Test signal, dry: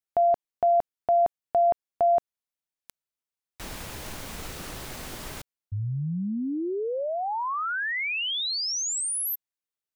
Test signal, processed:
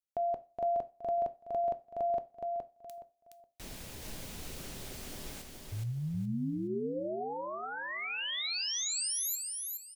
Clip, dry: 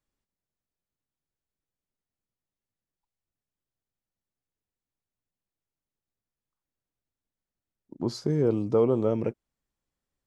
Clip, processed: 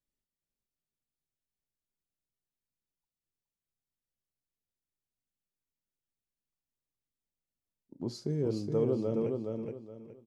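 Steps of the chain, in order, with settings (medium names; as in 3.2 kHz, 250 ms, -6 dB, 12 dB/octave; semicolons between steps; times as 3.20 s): peaking EQ 1.2 kHz -7.5 dB 1.6 oct; on a send: feedback delay 419 ms, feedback 27%, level -4 dB; on the sum: two-slope reverb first 0.32 s, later 1.5 s, from -27 dB, DRR 12 dB; trim -6.5 dB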